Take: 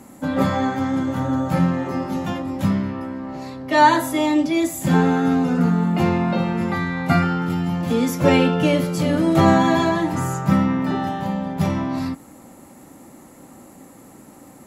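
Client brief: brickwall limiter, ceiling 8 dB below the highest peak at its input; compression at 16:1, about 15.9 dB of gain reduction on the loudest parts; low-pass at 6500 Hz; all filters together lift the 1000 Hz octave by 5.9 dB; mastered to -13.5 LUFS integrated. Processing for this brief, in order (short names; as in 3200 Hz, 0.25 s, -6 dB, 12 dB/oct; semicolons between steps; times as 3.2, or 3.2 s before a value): LPF 6500 Hz; bell 1000 Hz +7 dB; compressor 16:1, threshold -18 dBFS; gain +12.5 dB; limiter -4.5 dBFS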